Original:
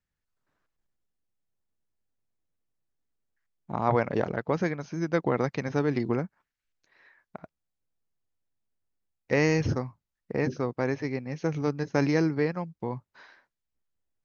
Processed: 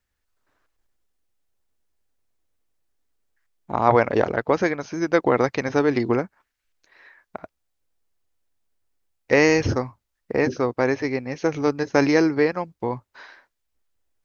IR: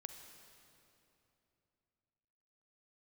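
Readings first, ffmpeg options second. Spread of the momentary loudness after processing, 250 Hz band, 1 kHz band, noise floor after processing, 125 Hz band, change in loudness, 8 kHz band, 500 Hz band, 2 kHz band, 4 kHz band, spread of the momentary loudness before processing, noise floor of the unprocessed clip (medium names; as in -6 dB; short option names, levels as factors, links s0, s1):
12 LU, +5.5 dB, +8.5 dB, -78 dBFS, +0.5 dB, +6.5 dB, no reading, +8.0 dB, +8.5 dB, +8.5 dB, 11 LU, under -85 dBFS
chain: -af "equalizer=f=160:w=1.8:g=-11.5,volume=2.66"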